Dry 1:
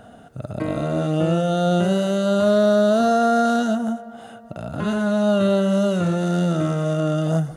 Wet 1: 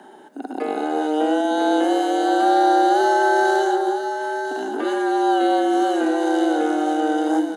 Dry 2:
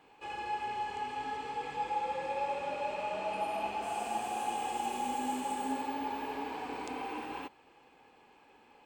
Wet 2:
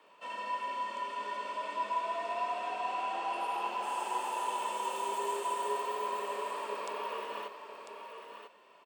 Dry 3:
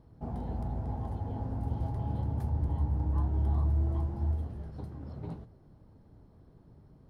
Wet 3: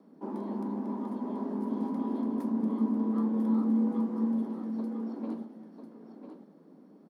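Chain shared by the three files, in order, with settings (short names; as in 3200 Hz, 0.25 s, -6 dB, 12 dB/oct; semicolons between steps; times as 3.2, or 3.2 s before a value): frequency shift +150 Hz; on a send: echo 0.997 s -8 dB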